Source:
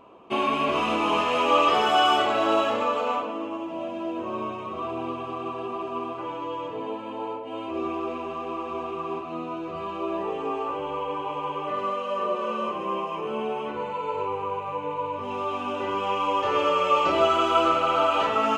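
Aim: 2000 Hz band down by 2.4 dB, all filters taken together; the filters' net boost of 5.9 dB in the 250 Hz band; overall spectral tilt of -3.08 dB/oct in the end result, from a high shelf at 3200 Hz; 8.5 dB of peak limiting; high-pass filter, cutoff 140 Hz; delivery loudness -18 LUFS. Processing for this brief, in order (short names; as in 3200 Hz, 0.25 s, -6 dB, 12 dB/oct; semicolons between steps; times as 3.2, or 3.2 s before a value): HPF 140 Hz; bell 250 Hz +8.5 dB; bell 2000 Hz -6 dB; high shelf 3200 Hz +5 dB; gain +9.5 dB; limiter -7 dBFS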